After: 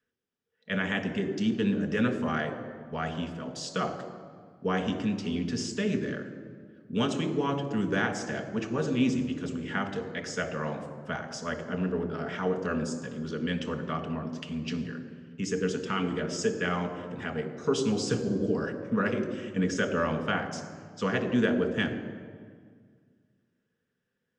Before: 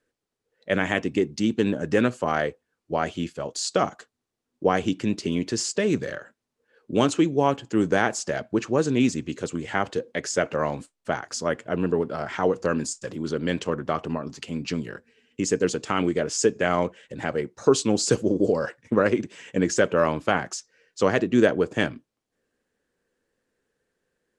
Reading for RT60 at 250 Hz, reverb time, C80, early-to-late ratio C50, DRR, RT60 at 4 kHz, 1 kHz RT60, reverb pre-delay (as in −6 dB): 2.4 s, 1.8 s, 10.5 dB, 9.0 dB, 4.5 dB, 1.3 s, 1.7 s, 3 ms